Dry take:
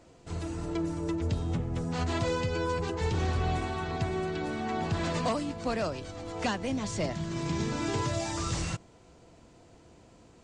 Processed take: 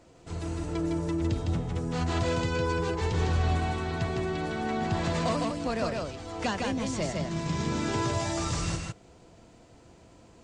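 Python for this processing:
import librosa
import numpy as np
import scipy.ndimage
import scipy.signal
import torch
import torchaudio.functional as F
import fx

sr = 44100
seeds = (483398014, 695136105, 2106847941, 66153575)

y = x + 10.0 ** (-3.0 / 20.0) * np.pad(x, (int(157 * sr / 1000.0), 0))[:len(x)]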